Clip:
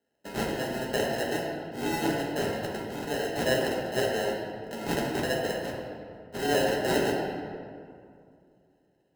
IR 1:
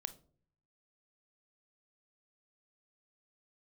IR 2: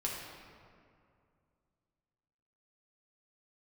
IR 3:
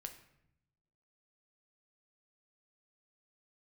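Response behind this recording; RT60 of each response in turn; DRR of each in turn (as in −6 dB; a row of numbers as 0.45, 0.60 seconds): 2; non-exponential decay, 2.3 s, 0.80 s; 12.0, −4.0, 5.5 decibels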